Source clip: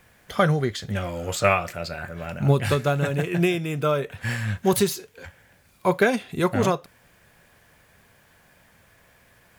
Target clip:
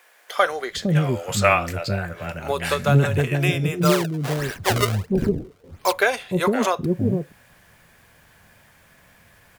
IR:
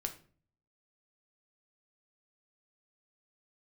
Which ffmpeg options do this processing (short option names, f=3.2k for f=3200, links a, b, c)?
-filter_complex "[0:a]asplit=3[a][b][c];[a]afade=t=out:st=3.81:d=0.02[d];[b]acrusher=samples=30:mix=1:aa=0.000001:lfo=1:lforange=48:lforate=1.5,afade=t=in:st=3.81:d=0.02,afade=t=out:st=5.91:d=0.02[e];[c]afade=t=in:st=5.91:d=0.02[f];[d][e][f]amix=inputs=3:normalize=0,acrossover=split=430[g][h];[g]adelay=460[i];[i][h]amix=inputs=2:normalize=0,volume=3.5dB"